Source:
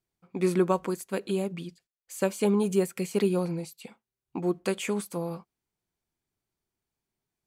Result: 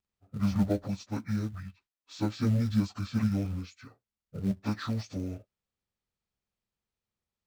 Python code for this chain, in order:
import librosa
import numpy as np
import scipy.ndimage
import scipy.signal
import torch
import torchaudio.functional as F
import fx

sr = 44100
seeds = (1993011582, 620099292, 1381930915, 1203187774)

p1 = fx.pitch_bins(x, sr, semitones=-10.5)
p2 = fx.air_absorb(p1, sr, metres=51.0)
p3 = fx.quant_float(p2, sr, bits=2)
p4 = p2 + (p3 * 10.0 ** (-4.0 / 20.0))
y = p4 * 10.0 ** (-6.0 / 20.0)